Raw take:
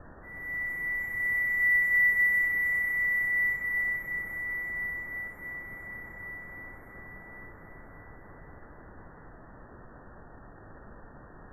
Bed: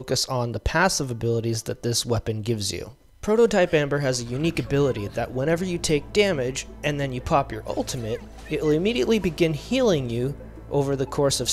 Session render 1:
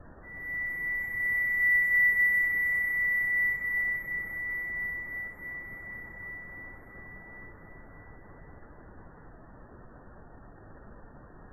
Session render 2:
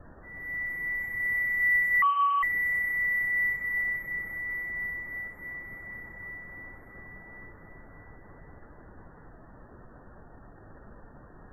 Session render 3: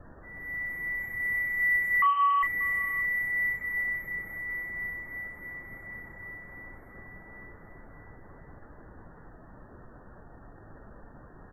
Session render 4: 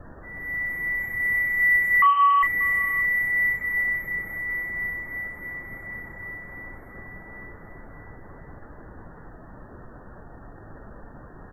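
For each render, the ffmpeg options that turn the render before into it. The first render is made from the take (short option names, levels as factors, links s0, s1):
-af "afftdn=nr=6:nf=-50"
-filter_complex "[0:a]asettb=1/sr,asplit=3[s0][s1][s2];[s0]atrim=end=2.024[s3];[s1]atrim=start=2.02:end=2.43,asetpts=PTS-STARTPTS,afade=t=in:d=0.004:c=qsin,afade=t=out:st=0.406:d=0.004:c=qsin,lowpass=f=2600:t=q:w=0.5098,lowpass=f=2600:t=q:w=0.6013,lowpass=f=2600:t=q:w=0.9,lowpass=f=2600:t=q:w=2.563,afreqshift=-3100[s4];[s2]atrim=start=2.426[s5];[s3][s4]acrossfade=d=0.004:c1=hsin:c2=qsin[s6];[s6][s5]acrossfade=d=0.004:c1=qsin:c2=hsin"
-filter_complex "[0:a]asplit=2[s0][s1];[s1]adelay=39,volume=0.266[s2];[s0][s2]amix=inputs=2:normalize=0,asplit=2[s3][s4];[s4]adelay=583.1,volume=0.112,highshelf=f=4000:g=-13.1[s5];[s3][s5]amix=inputs=2:normalize=0"
-af "volume=2"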